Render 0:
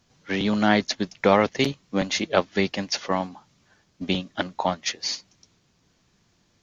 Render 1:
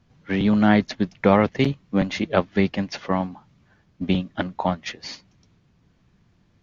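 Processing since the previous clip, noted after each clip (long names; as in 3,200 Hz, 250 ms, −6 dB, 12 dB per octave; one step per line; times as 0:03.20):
bass and treble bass +8 dB, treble −13 dB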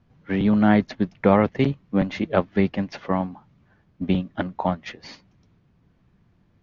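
low-pass filter 2,000 Hz 6 dB per octave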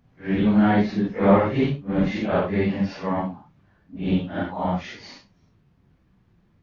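random phases in long frames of 200 ms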